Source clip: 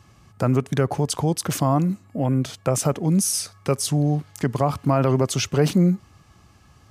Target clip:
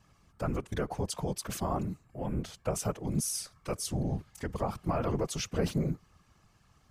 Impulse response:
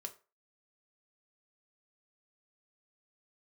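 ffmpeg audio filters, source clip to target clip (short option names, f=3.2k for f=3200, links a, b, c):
-af "afftfilt=real='hypot(re,im)*cos(2*PI*random(0))':imag='hypot(re,im)*sin(2*PI*random(1))':win_size=512:overlap=0.75,equalizer=f=260:t=o:w=0.99:g=-4.5,volume=-4.5dB"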